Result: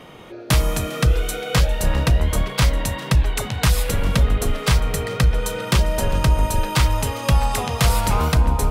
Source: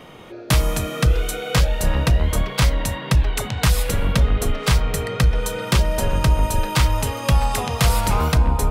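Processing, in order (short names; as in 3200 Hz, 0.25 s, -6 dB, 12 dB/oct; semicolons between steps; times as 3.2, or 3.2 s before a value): on a send: thin delay 0.402 s, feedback 57%, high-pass 1900 Hz, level -19 dB; on the sum: Opus 96 kbps 48000 Hz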